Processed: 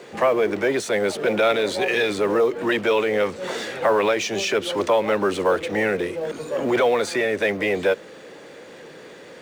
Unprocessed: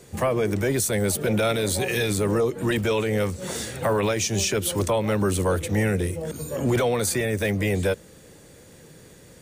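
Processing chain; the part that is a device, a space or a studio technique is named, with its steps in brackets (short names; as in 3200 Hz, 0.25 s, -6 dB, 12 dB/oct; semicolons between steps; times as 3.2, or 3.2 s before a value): phone line with mismatched companding (BPF 370–3300 Hz; G.711 law mismatch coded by mu); gain +5 dB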